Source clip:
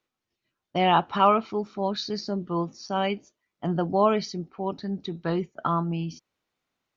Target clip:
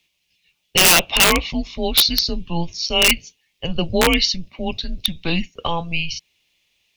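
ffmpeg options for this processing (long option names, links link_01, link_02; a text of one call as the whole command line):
ffmpeg -i in.wav -af "afreqshift=-170,highshelf=frequency=1900:width_type=q:width=3:gain=11,aeval=exprs='(mod(3.35*val(0)+1,2)-1)/3.35':channel_layout=same,volume=5.5dB" out.wav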